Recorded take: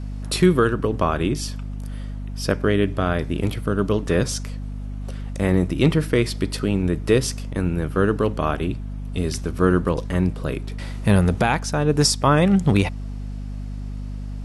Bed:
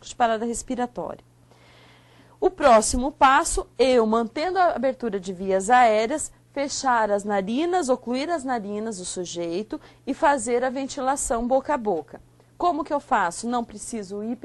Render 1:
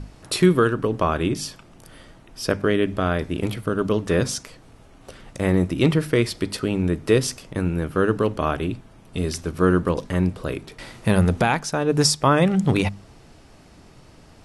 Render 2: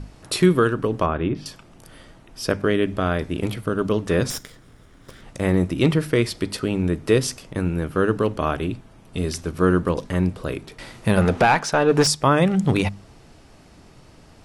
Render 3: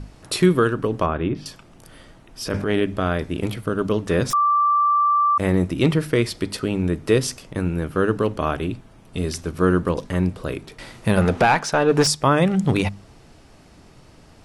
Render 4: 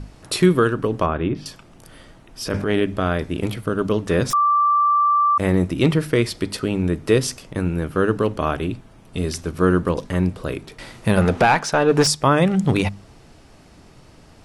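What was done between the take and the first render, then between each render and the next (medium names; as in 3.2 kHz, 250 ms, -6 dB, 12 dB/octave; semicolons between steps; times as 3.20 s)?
hum notches 50/100/150/200/250 Hz
1.06–1.46 s: distance through air 370 m; 4.30–5.22 s: comb filter that takes the minimum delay 0.57 ms; 11.17–12.07 s: overdrive pedal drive 17 dB, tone 2.1 kHz, clips at -5 dBFS
2.41–2.81 s: transient shaper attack -8 dB, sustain +8 dB; 4.33–5.38 s: bleep 1.17 kHz -14.5 dBFS
trim +1 dB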